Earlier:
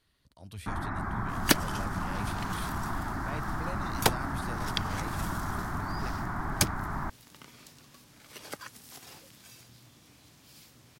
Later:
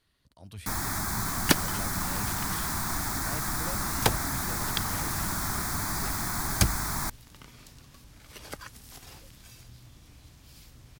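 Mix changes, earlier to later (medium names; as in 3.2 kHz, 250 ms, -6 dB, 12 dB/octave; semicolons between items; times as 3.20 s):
first sound: remove low-pass 1.7 kHz 24 dB/octave; second sound: remove high-pass 160 Hz 12 dB/octave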